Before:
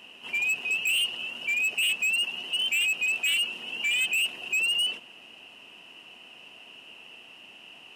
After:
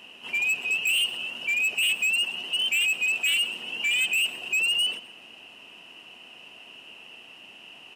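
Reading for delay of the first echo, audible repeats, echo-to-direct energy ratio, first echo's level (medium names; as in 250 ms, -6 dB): 127 ms, 2, -17.5 dB, -18.0 dB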